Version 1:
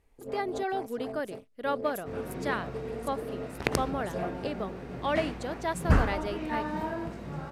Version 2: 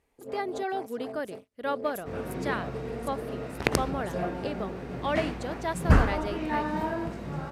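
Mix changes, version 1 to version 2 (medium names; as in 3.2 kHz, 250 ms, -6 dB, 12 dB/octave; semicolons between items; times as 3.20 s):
first sound: add high-pass 170 Hz 6 dB/octave; second sound +3.0 dB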